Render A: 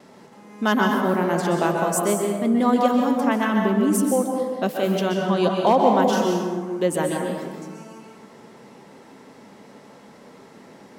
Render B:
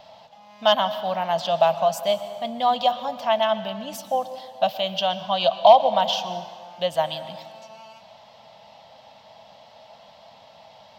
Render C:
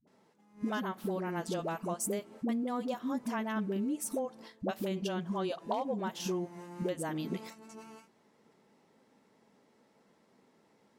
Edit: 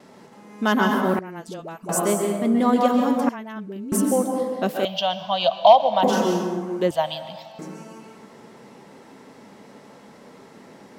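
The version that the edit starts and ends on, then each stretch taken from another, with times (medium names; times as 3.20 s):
A
1.19–1.89 s: from C
3.29–3.92 s: from C
4.85–6.03 s: from B
6.91–7.59 s: from B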